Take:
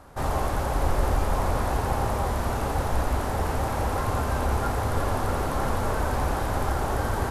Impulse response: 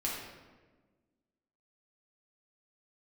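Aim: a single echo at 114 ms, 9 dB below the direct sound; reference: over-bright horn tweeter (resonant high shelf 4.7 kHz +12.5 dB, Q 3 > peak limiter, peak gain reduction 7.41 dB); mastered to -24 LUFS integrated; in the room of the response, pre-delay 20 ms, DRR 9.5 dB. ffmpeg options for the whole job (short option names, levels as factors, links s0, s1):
-filter_complex "[0:a]aecho=1:1:114:0.355,asplit=2[s0][s1];[1:a]atrim=start_sample=2205,adelay=20[s2];[s1][s2]afir=irnorm=-1:irlink=0,volume=0.2[s3];[s0][s3]amix=inputs=2:normalize=0,highshelf=f=4700:t=q:w=3:g=12.5,volume=1.26,alimiter=limit=0.188:level=0:latency=1"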